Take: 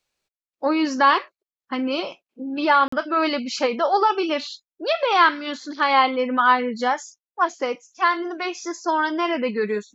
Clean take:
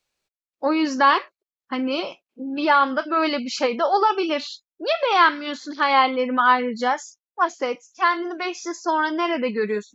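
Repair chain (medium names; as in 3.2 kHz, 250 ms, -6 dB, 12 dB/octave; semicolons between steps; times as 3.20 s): interpolate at 2.88 s, 44 ms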